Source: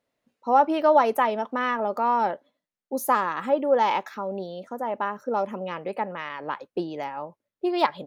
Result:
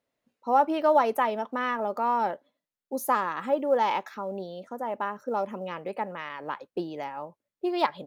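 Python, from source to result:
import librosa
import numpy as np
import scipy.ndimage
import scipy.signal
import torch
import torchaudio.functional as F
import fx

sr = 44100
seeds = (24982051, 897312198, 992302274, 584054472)

y = fx.quant_float(x, sr, bits=6)
y = F.gain(torch.from_numpy(y), -3.0).numpy()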